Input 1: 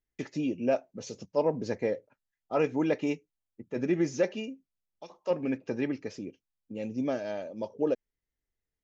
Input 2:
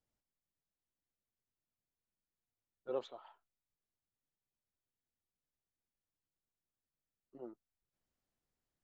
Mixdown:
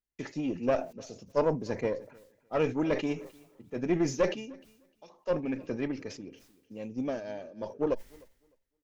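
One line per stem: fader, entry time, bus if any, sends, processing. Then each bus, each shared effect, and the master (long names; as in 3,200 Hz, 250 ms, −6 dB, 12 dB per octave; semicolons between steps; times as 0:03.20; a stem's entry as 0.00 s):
+2.5 dB, 0.00 s, no send, echo send −18 dB, one-sided soft clipper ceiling −24.5 dBFS; level that may fall only so fast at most 95 dB per second
−3.5 dB, 0.00 s, no send, echo send −3 dB, no processing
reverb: not used
echo: repeating echo 304 ms, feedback 20%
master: expander for the loud parts 1.5 to 1, over −42 dBFS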